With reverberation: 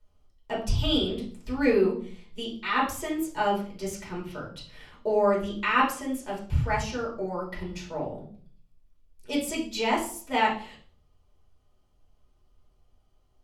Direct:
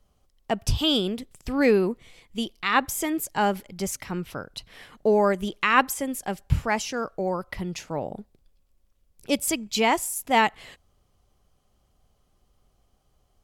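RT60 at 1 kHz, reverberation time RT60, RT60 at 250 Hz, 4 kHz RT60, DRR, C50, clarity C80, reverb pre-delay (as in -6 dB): 0.45 s, 0.50 s, 0.70 s, 0.40 s, -5.5 dB, 7.0 dB, 12.0 dB, 3 ms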